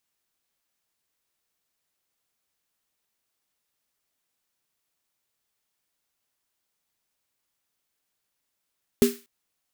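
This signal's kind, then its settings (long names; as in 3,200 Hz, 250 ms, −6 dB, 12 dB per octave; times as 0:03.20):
synth snare length 0.24 s, tones 240 Hz, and 400 Hz, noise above 1,300 Hz, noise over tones −11.5 dB, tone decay 0.24 s, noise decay 0.36 s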